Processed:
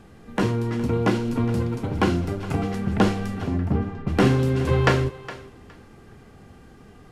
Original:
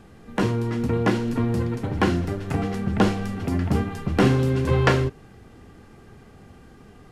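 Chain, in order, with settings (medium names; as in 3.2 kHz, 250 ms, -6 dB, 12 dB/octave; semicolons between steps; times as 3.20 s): 0.80–2.71 s: band-stop 1.8 kHz, Q 8.1; 3.47–4.07 s: tape spacing loss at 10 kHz 36 dB; thinning echo 414 ms, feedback 19%, high-pass 420 Hz, level -15 dB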